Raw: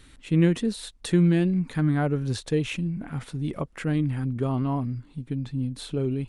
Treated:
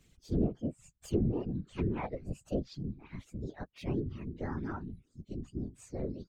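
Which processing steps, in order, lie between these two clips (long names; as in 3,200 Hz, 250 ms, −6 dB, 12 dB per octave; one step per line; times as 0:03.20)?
partials spread apart or drawn together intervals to 125%
reverb reduction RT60 1.3 s
treble cut that deepens with the level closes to 680 Hz, closed at −18.5 dBFS
random phases in short frames
level −7.5 dB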